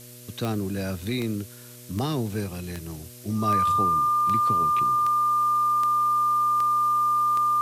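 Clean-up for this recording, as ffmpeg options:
ffmpeg -i in.wav -af "adeclick=threshold=4,bandreject=frequency=121.8:width_type=h:width=4,bandreject=frequency=243.6:width_type=h:width=4,bandreject=frequency=365.4:width_type=h:width=4,bandreject=frequency=487.2:width_type=h:width=4,bandreject=frequency=609:width_type=h:width=4,bandreject=frequency=1200:width=30,afftdn=noise_reduction=27:noise_floor=-44" out.wav

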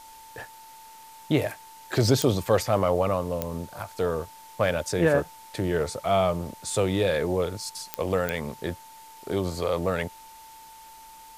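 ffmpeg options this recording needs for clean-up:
ffmpeg -i in.wav -af "adeclick=threshold=4,bandreject=frequency=890:width=30,afwtdn=0.0028" out.wav

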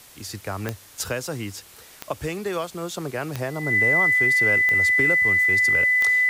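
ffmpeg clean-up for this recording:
ffmpeg -i in.wav -af "adeclick=threshold=4,bandreject=frequency=2000:width=30,afwtdn=0.0045" out.wav

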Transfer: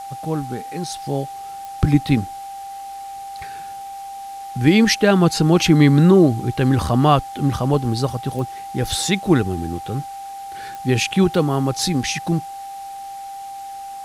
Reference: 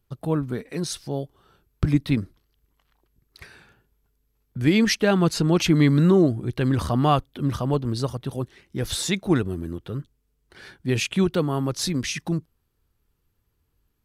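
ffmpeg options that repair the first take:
ffmpeg -i in.wav -af "adeclick=threshold=4,bandreject=frequency=790:width=30,agate=range=-21dB:threshold=-25dB,asetnsamples=nb_out_samples=441:pad=0,asendcmd='1.02 volume volume -5dB',volume=0dB" out.wav

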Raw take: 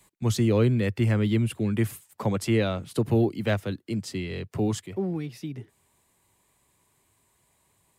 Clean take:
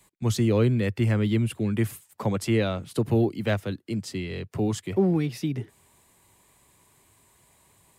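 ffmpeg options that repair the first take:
ffmpeg -i in.wav -af "asetnsamples=nb_out_samples=441:pad=0,asendcmd='4.86 volume volume 7dB',volume=0dB" out.wav

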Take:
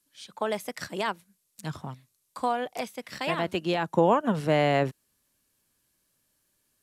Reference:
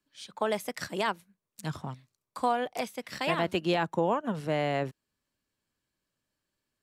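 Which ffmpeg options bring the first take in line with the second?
ffmpeg -i in.wav -af "agate=range=-21dB:threshold=-65dB,asetnsamples=nb_out_samples=441:pad=0,asendcmd='3.94 volume volume -6dB',volume=0dB" out.wav

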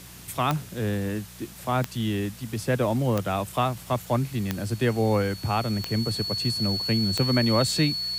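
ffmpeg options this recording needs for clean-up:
ffmpeg -i in.wav -af "adeclick=threshold=4,bandreject=frequency=59.9:width_type=h:width=4,bandreject=frequency=119.8:width_type=h:width=4,bandreject=frequency=179.7:width_type=h:width=4,bandreject=frequency=4400:width=30,afwtdn=0.005" out.wav

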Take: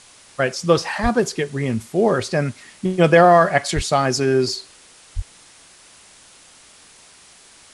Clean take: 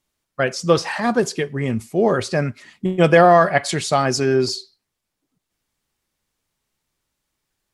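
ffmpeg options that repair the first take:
ffmpeg -i in.wav -filter_complex "[0:a]asplit=3[link_01][link_02][link_03];[link_01]afade=type=out:start_time=1.02:duration=0.02[link_04];[link_02]highpass=frequency=140:width=0.5412,highpass=frequency=140:width=1.3066,afade=type=in:start_time=1.02:duration=0.02,afade=type=out:start_time=1.14:duration=0.02[link_05];[link_03]afade=type=in:start_time=1.14:duration=0.02[link_06];[link_04][link_05][link_06]amix=inputs=3:normalize=0,asplit=3[link_07][link_08][link_09];[link_07]afade=type=out:start_time=3.75:duration=0.02[link_10];[link_08]highpass=frequency=140:width=0.5412,highpass=frequency=140:width=1.3066,afade=type=in:start_time=3.75:duration=0.02,afade=type=out:start_time=3.87:duration=0.02[link_11];[link_09]afade=type=in:start_time=3.87:duration=0.02[link_12];[link_10][link_11][link_12]amix=inputs=3:normalize=0,asplit=3[link_13][link_14][link_15];[link_13]afade=type=out:start_time=5.15:duration=0.02[link_16];[link_14]highpass=frequency=140:width=0.5412,highpass=frequency=140:width=1.3066,afade=type=in:start_time=5.15:duration=0.02,afade=type=out:start_time=5.27:duration=0.02[link_17];[link_15]afade=type=in:start_time=5.27:duration=0.02[link_18];[link_16][link_17][link_18]amix=inputs=3:normalize=0,afwtdn=0.0056" out.wav

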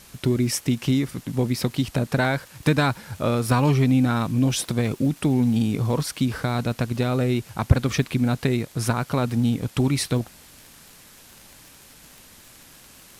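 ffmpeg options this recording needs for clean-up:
ffmpeg -i in.wav -af "adeclick=threshold=4,afftdn=noise_reduction=19:noise_floor=-49" out.wav

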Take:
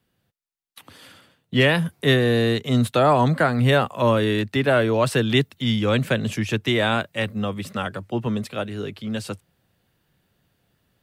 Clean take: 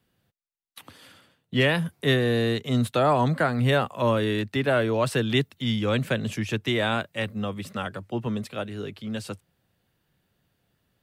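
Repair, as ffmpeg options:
ffmpeg -i in.wav -af "asetnsamples=nb_out_samples=441:pad=0,asendcmd='0.91 volume volume -4dB',volume=0dB" out.wav

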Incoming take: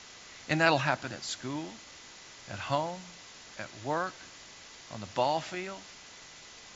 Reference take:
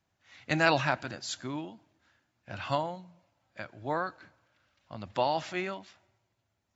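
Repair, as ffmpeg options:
ffmpeg -i in.wav -af "bandreject=frequency=2000:width=30,afwtdn=0.005,asetnsamples=nb_out_samples=441:pad=0,asendcmd='5.55 volume volume 4.5dB',volume=0dB" out.wav

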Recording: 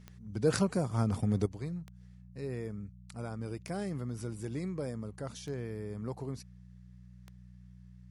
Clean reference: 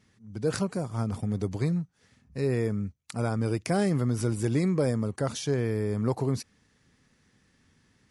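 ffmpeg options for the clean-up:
ffmpeg -i in.wav -af "adeclick=threshold=4,bandreject=frequency=60.9:width_type=h:width=4,bandreject=frequency=121.8:width_type=h:width=4,bandreject=frequency=182.7:width_type=h:width=4,asetnsamples=nb_out_samples=441:pad=0,asendcmd='1.46 volume volume 11.5dB',volume=0dB" out.wav

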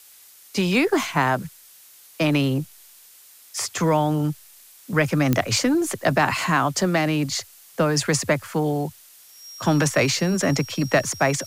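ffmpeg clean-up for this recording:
ffmpeg -i in.wav -af "adeclick=threshold=4,bandreject=frequency=5600:width=30,afftdn=noise_reduction=18:noise_floor=-49" out.wav

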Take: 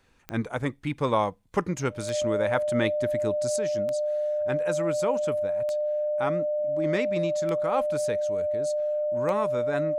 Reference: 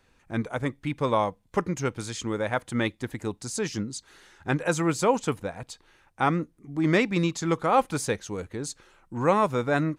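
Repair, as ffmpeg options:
ffmpeg -i in.wav -af "adeclick=threshold=4,bandreject=frequency=600:width=30,asetnsamples=nb_out_samples=441:pad=0,asendcmd='3.56 volume volume 6.5dB',volume=0dB" out.wav

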